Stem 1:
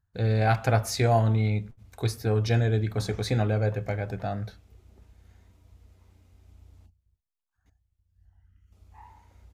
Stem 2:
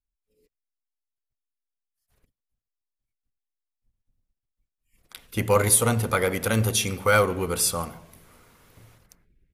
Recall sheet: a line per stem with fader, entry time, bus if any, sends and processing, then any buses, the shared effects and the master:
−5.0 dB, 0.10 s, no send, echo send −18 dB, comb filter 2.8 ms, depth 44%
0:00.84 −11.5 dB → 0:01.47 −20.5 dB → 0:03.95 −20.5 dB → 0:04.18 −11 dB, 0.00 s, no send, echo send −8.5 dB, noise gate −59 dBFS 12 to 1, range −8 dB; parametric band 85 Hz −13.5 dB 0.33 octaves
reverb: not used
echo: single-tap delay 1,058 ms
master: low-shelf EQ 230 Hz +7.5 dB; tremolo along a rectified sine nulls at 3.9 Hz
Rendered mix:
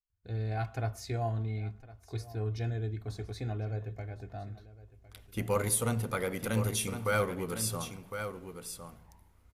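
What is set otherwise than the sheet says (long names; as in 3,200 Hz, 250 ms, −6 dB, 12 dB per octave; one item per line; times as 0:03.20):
stem 1 −5.0 dB → −15.0 dB
master: missing tremolo along a rectified sine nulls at 3.9 Hz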